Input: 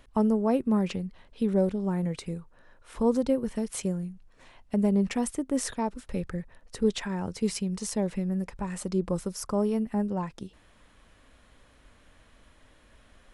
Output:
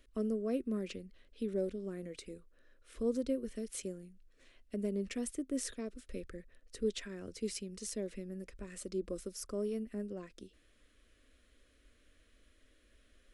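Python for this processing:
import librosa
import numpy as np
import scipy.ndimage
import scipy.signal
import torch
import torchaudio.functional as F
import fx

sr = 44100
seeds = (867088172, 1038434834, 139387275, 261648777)

y = fx.fixed_phaser(x, sr, hz=360.0, stages=4)
y = y * librosa.db_to_amplitude(-7.0)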